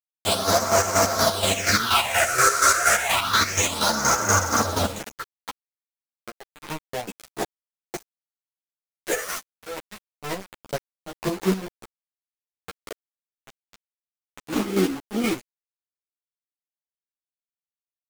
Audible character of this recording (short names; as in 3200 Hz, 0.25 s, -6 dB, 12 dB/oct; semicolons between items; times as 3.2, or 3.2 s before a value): phasing stages 6, 0.29 Hz, lowest notch 210–3400 Hz; a quantiser's noise floor 6-bit, dither none; chopped level 4.2 Hz, depth 60%, duty 40%; a shimmering, thickened sound